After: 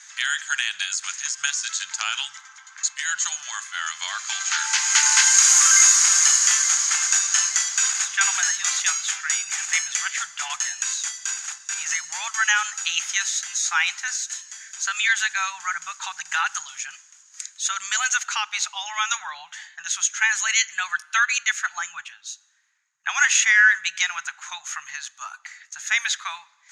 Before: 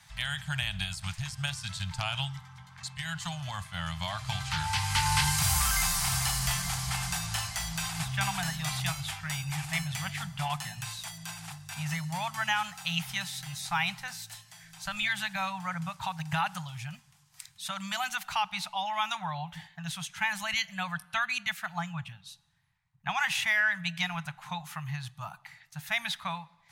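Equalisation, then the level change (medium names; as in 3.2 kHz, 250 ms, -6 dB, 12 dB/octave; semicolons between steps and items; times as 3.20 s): resonant high-pass 1.5 kHz, resonance Q 2.7; resonant low-pass 6.7 kHz, resonance Q 14; +3.0 dB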